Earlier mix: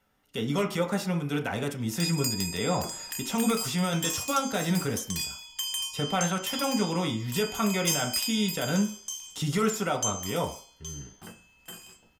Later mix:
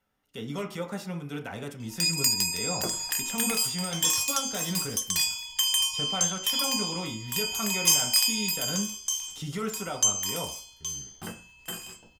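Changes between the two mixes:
speech -6.5 dB; background +7.0 dB

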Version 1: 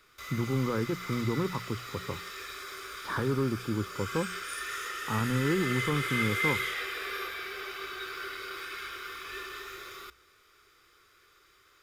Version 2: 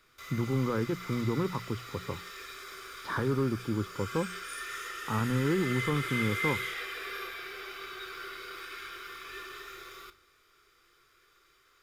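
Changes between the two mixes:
background -4.0 dB; reverb: on, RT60 0.45 s

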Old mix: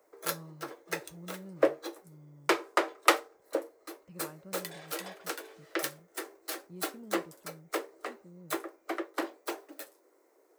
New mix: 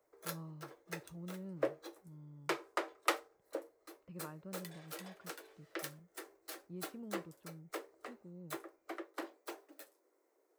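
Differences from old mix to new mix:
speech: add boxcar filter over 6 samples; background -10.0 dB

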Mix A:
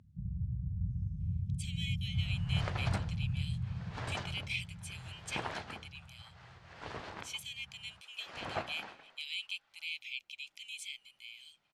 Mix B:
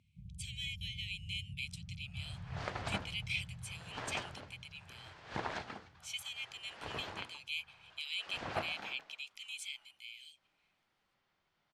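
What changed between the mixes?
speech: entry -1.20 s; first sound -11.5 dB

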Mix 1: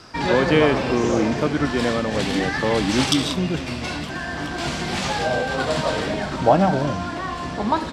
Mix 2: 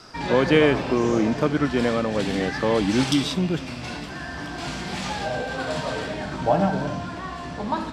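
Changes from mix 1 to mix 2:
background -7.5 dB; reverb: on, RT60 0.70 s

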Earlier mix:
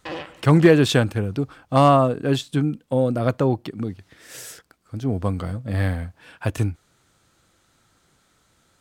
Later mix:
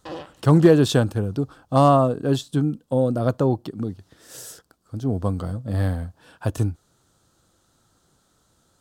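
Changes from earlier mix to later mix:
background: send -11.5 dB; master: add peaking EQ 2.2 kHz -13 dB 0.76 oct

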